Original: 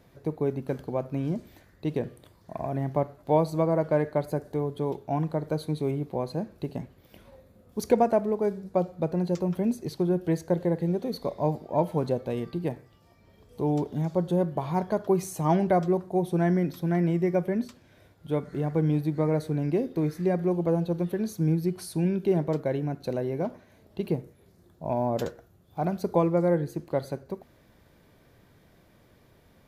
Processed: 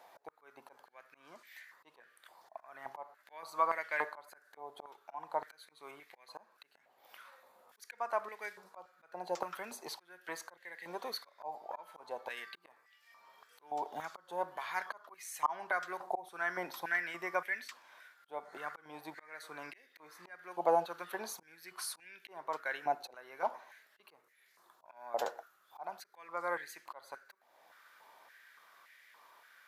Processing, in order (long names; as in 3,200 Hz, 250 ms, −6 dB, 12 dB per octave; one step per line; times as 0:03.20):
volume swells 462 ms
high-pass on a step sequencer 3.5 Hz 800–1,900 Hz